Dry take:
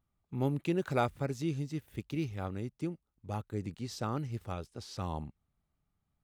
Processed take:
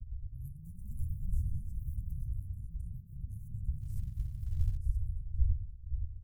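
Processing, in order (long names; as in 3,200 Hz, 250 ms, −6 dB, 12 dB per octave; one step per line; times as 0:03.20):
wind on the microphone 81 Hz −32 dBFS
shaped tremolo saw down 9.1 Hz, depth 55%
inverse Chebyshev band-stop filter 390–2,900 Hz, stop band 70 dB
feedback echo with a low-pass in the loop 523 ms, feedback 30%, low-pass 3,600 Hz, level −8 dB
speech leveller within 3 dB 2 s
downward expander −40 dBFS
delay with pitch and tempo change per echo 312 ms, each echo +4 semitones, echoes 2, each echo −6 dB
0:03.81–0:04.77: log-companded quantiser 8 bits
level −1 dB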